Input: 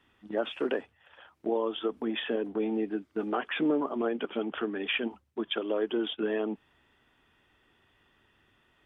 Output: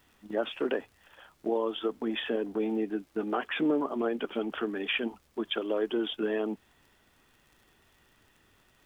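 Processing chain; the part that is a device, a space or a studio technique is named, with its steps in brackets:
vinyl LP (surface crackle 77 per second −51 dBFS; pink noise bed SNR 36 dB)

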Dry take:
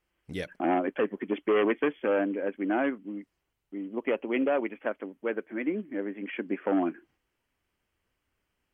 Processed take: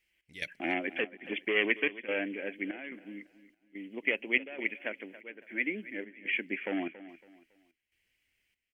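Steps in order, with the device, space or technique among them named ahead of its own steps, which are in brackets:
high shelf with overshoot 1,600 Hz +10 dB, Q 3
trance gate with a delay (gate pattern "x.xxx.xx" 72 BPM −12 dB; repeating echo 278 ms, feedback 32%, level −16 dB)
level −7 dB

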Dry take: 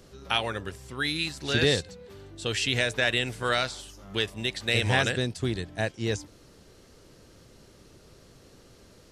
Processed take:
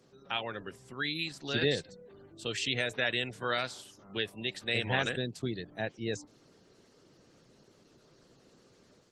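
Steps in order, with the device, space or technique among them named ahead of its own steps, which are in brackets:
0:03.57–0:04.62: dynamic equaliser 9,900 Hz, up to +3 dB, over −55 dBFS, Q 1.9
noise-suppressed video call (high-pass filter 120 Hz 24 dB per octave; gate on every frequency bin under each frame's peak −25 dB strong; automatic gain control gain up to 3 dB; level −8 dB; Opus 16 kbit/s 48,000 Hz)

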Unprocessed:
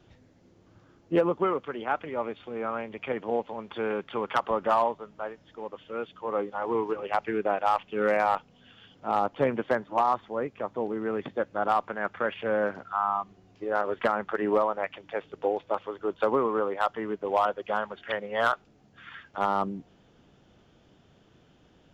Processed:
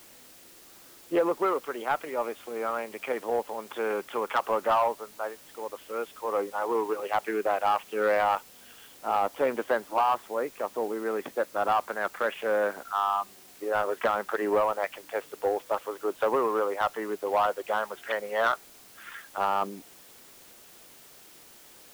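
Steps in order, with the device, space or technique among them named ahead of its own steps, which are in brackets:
tape answering machine (band-pass filter 350–3,100 Hz; soft clipping −18.5 dBFS, distortion −16 dB; tape wow and flutter 22 cents; white noise bed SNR 23 dB)
level +2.5 dB

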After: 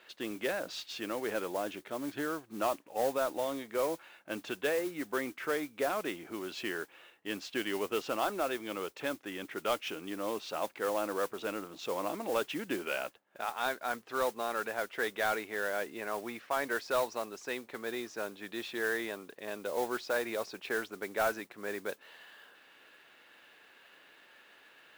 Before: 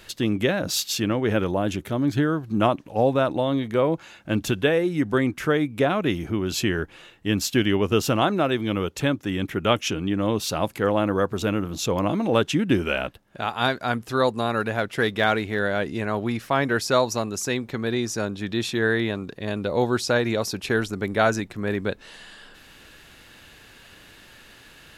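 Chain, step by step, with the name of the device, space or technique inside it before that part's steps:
carbon microphone (band-pass filter 430–3,000 Hz; soft clipping −13 dBFS, distortion −18 dB; noise that follows the level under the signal 15 dB)
level −7.5 dB

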